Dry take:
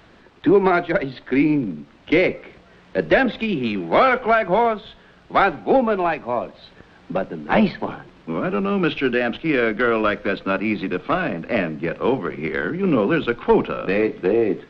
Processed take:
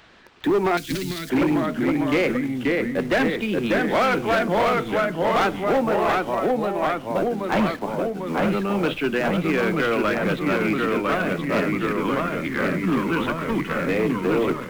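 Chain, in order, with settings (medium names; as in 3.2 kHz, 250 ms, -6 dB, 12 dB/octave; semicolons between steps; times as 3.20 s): 11.87–13.71 s: time-frequency box 350–930 Hz -13 dB; in parallel at -5 dB: word length cut 6-bit, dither none; on the sum: ever faster or slower copies 407 ms, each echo -1 st, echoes 3; hard clipper -9.5 dBFS, distortion -13 dB; 0.77–1.30 s: FFT filter 210 Hz 0 dB, 760 Hz -22 dB, 4.7 kHz +12 dB; tape noise reduction on one side only encoder only; trim -6.5 dB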